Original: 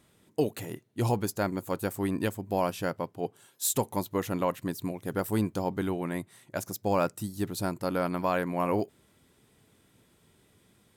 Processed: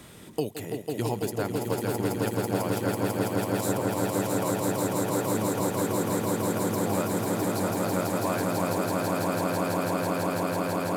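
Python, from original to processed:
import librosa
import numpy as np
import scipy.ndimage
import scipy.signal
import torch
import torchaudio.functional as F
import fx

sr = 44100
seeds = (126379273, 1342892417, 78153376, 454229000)

y = fx.echo_swell(x, sr, ms=165, loudest=8, wet_db=-3.5)
y = fx.band_squash(y, sr, depth_pct=70)
y = y * 10.0 ** (-5.0 / 20.0)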